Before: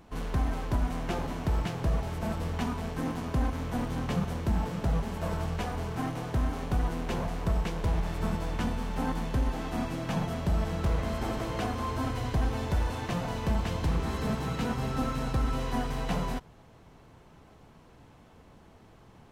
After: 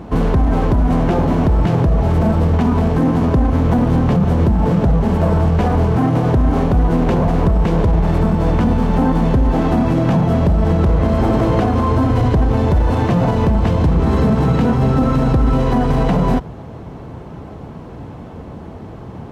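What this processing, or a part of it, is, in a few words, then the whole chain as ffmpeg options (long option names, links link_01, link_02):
mastering chain: -af "highpass=53,equalizer=frequency=4100:width_type=o:width=1.5:gain=2.5,acompressor=threshold=-31dB:ratio=2,asoftclip=type=tanh:threshold=-22dB,tiltshelf=frequency=1500:gain=9,alimiter=level_in=21.5dB:limit=-1dB:release=50:level=0:latency=1,volume=-6dB"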